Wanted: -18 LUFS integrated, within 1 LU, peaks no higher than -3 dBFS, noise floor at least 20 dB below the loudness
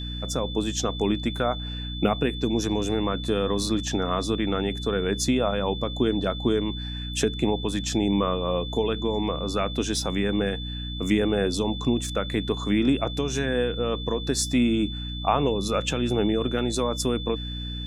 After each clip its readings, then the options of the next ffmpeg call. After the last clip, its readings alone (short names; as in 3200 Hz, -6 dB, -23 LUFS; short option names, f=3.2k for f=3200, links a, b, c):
hum 60 Hz; harmonics up to 300 Hz; hum level -31 dBFS; steady tone 3500 Hz; tone level -36 dBFS; loudness -25.5 LUFS; peak -7.5 dBFS; loudness target -18.0 LUFS
-> -af "bandreject=f=60:t=h:w=4,bandreject=f=120:t=h:w=4,bandreject=f=180:t=h:w=4,bandreject=f=240:t=h:w=4,bandreject=f=300:t=h:w=4"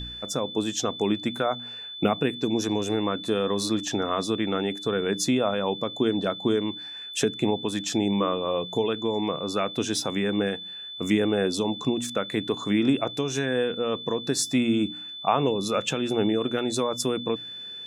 hum none; steady tone 3500 Hz; tone level -36 dBFS
-> -af "bandreject=f=3.5k:w=30"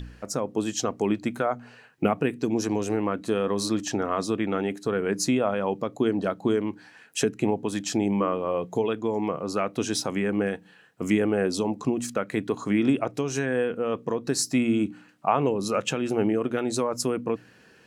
steady tone none; loudness -27.0 LUFS; peak -8.5 dBFS; loudness target -18.0 LUFS
-> -af "volume=9dB,alimiter=limit=-3dB:level=0:latency=1"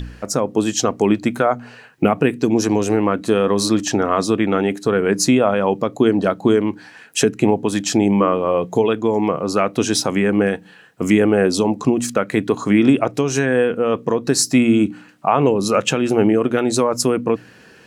loudness -18.0 LUFS; peak -3.0 dBFS; noise floor -46 dBFS